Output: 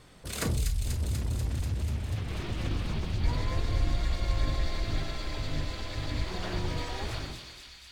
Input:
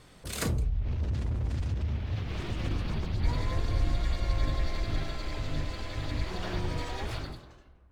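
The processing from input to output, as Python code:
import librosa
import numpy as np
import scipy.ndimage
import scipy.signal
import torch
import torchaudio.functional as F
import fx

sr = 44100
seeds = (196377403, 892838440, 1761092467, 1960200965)

y = fx.echo_wet_highpass(x, sr, ms=244, feedback_pct=75, hz=2900.0, wet_db=-3)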